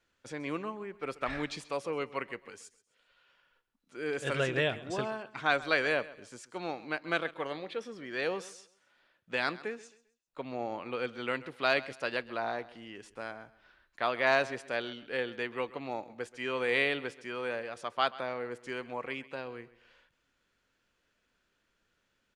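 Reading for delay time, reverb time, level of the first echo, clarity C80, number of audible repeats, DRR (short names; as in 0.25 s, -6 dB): 0.132 s, none, -18.5 dB, none, 2, none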